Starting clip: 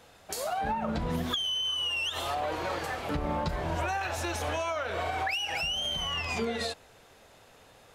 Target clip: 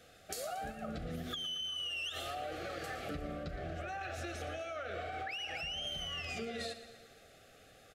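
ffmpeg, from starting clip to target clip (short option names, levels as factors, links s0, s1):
-filter_complex "[0:a]asettb=1/sr,asplit=3[s0][s1][s2];[s0]atrim=end=3.434[s3];[s1]atrim=start=3.43:end=5.87,asetpts=PTS-STARTPTS,afade=t=in:d=0.004:c=qsin,afade=t=out:st=2.436:d=0.004:c=qsin,highshelf=f=6000:g=-10.5[s4];[s2]atrim=start=5.866[s5];[s3][s4]acrossfade=d=0.004:c1=hsin:c2=qsin[s6];[s6][s5]acrossfade=d=0.004:c1=qsin:c2=hsin,acompressor=threshold=0.02:ratio=6,asuperstop=centerf=960:order=12:qfactor=2.8,aecho=1:1:116|232|348|464|580|696:0.224|0.13|0.0753|0.0437|0.0253|0.0147,volume=0.668"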